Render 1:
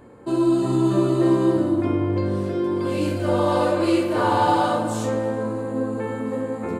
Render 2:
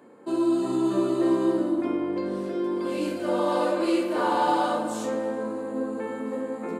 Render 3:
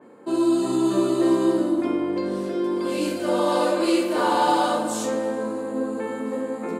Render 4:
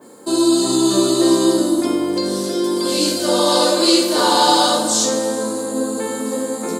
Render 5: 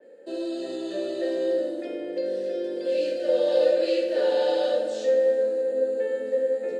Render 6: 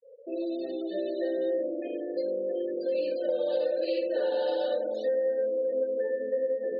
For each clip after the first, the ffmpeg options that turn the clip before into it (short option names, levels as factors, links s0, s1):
-af "highpass=f=190:w=0.5412,highpass=f=190:w=1.3066,volume=0.631"
-af "adynamicequalizer=threshold=0.00631:dfrequency=3200:dqfactor=0.7:tfrequency=3200:tqfactor=0.7:attack=5:release=100:ratio=0.375:range=3:mode=boostabove:tftype=highshelf,volume=1.41"
-filter_complex "[0:a]acrossover=split=5700[s0][s1];[s1]acompressor=threshold=0.00158:ratio=4:attack=1:release=60[s2];[s0][s2]amix=inputs=2:normalize=0,aexciter=amount=8.5:drive=4.5:freq=3700,volume=1.78"
-filter_complex "[0:a]acrossover=split=390|1300|5900[s0][s1][s2][s3];[s0]alimiter=limit=0.141:level=0:latency=1[s4];[s4][s1][s2][s3]amix=inputs=4:normalize=0,asplit=3[s5][s6][s7];[s5]bandpass=f=530:t=q:w=8,volume=1[s8];[s6]bandpass=f=1840:t=q:w=8,volume=0.501[s9];[s7]bandpass=f=2480:t=q:w=8,volume=0.355[s10];[s8][s9][s10]amix=inputs=3:normalize=0,highshelf=f=5500:g=-8,volume=1.26"
-af "afftfilt=real='re*gte(hypot(re,im),0.0178)':imag='im*gte(hypot(re,im),0.0178)':win_size=1024:overlap=0.75,acompressor=threshold=0.0708:ratio=6,volume=0.841"